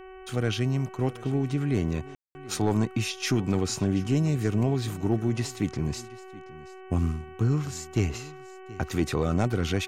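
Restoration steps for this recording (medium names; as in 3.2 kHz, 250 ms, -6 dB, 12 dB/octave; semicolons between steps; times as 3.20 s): clip repair -15 dBFS; de-hum 376 Hz, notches 8; room tone fill 2.15–2.35 s; inverse comb 728 ms -20 dB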